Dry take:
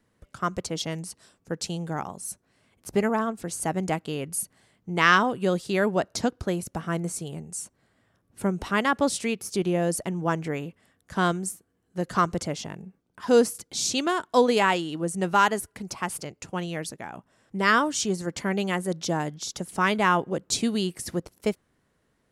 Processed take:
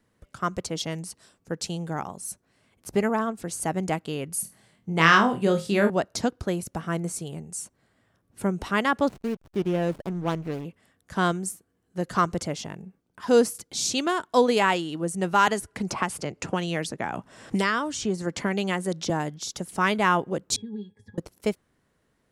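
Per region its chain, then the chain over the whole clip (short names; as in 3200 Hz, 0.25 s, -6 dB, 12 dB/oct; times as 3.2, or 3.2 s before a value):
4.42–5.9 bell 160 Hz +4 dB 1.2 oct + flutter echo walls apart 4.2 m, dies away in 0.24 s
9.08–10.65 median filter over 25 samples + backlash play -37 dBFS
15.47–19.1 LPF 10000 Hz + three-band squash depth 100%
20.56–21.18 compressor 4:1, threshold -28 dBFS + octave resonator G#, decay 0.11 s
whole clip: dry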